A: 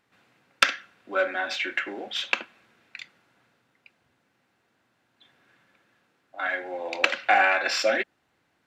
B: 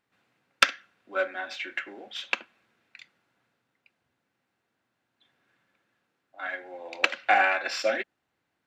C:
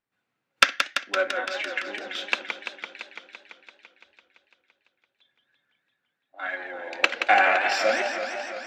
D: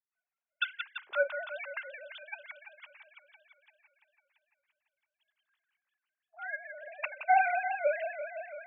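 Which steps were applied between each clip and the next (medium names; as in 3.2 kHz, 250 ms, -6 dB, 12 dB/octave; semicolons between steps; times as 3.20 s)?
upward expansion 1.5:1, over -32 dBFS
spectral noise reduction 12 dB; modulated delay 169 ms, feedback 75%, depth 183 cents, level -7.5 dB; trim +2.5 dB
formants replaced by sine waves; trim -8 dB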